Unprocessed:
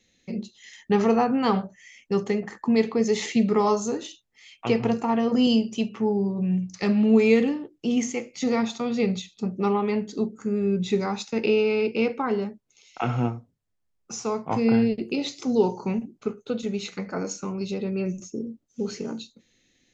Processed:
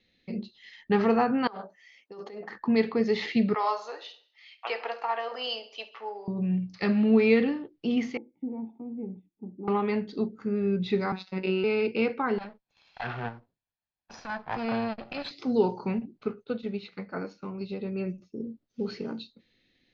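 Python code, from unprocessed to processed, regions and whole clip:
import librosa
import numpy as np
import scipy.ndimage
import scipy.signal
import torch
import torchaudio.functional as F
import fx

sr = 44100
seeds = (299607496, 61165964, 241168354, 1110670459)

y = fx.chain(x, sr, fx.highpass(hz=530.0, slope=12),
    fx.peak_eq(hz=2400.0, db=-11.0, octaves=1.7),
    fx.over_compress(threshold_db=-38.0, ratio=-1.0), at=(1.47, 2.5))
y = fx.chain(y, sr, fx.highpass(hz=580.0, slope=24),
    fx.echo_feedback(ms=68, feedback_pct=48, wet_db=-16.5), at=(3.54, 6.28))
y = fx.chain(y, sr, fx.formant_cascade(vowel='u'),
    fx.peak_eq(hz=2900.0, db=12.5, octaves=0.34), at=(8.17, 9.68))
y = fx.chain(y, sr, fx.high_shelf(hz=5800.0, db=-9.0),
    fx.robotise(hz=188.0), at=(11.12, 11.64))
y = fx.chain(y, sr, fx.lower_of_two(delay_ms=1.2),
    fx.low_shelf(hz=240.0, db=-10.5),
    fx.transformer_sat(knee_hz=450.0), at=(12.38, 15.31))
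y = fx.chain(y, sr, fx.air_absorb(metres=59.0),
    fx.upward_expand(threshold_db=-41.0, expansion=1.5), at=(16.44, 18.4))
y = fx.dynamic_eq(y, sr, hz=1600.0, q=2.4, threshold_db=-47.0, ratio=4.0, max_db=5)
y = scipy.signal.sosfilt(scipy.signal.cheby1(4, 1.0, 4600.0, 'lowpass', fs=sr, output='sos'), y)
y = y * 10.0 ** (-2.0 / 20.0)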